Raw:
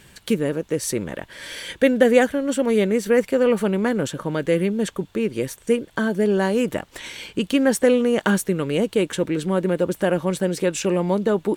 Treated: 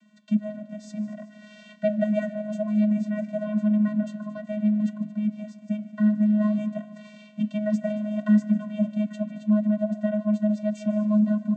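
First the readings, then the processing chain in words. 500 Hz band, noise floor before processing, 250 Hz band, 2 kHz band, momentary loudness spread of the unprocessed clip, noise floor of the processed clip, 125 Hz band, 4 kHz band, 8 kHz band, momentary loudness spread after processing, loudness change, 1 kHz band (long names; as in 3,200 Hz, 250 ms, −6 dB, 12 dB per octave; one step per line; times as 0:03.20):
−12.0 dB, −52 dBFS, 0.0 dB, −15.5 dB, 10 LU, −50 dBFS, −2.5 dB, below −15 dB, below −20 dB, 13 LU, −4.0 dB, −15.0 dB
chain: echo machine with several playback heads 75 ms, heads second and third, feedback 64%, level −18 dB
channel vocoder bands 16, square 211 Hz
flanger 0.58 Hz, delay 5.6 ms, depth 3.8 ms, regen +85%
level +1.5 dB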